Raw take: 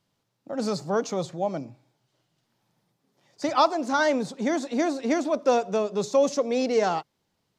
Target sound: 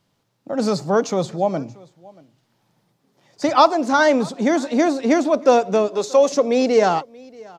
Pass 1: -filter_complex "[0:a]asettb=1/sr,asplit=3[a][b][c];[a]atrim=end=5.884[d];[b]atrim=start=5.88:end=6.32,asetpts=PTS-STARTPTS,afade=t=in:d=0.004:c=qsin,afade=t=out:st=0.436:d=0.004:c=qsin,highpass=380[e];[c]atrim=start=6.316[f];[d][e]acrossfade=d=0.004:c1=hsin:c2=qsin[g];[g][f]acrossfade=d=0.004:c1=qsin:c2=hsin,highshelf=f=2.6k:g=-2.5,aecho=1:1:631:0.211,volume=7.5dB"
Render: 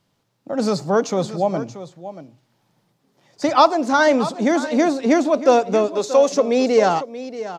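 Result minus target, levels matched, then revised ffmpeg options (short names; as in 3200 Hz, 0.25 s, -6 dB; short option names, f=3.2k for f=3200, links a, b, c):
echo-to-direct +10.5 dB
-filter_complex "[0:a]asettb=1/sr,asplit=3[a][b][c];[a]atrim=end=5.884[d];[b]atrim=start=5.88:end=6.32,asetpts=PTS-STARTPTS,afade=t=in:d=0.004:c=qsin,afade=t=out:st=0.436:d=0.004:c=qsin,highpass=380[e];[c]atrim=start=6.316[f];[d][e]acrossfade=d=0.004:c1=hsin:c2=qsin[g];[g][f]acrossfade=d=0.004:c1=qsin:c2=hsin,highshelf=f=2.6k:g=-2.5,aecho=1:1:631:0.0631,volume=7.5dB"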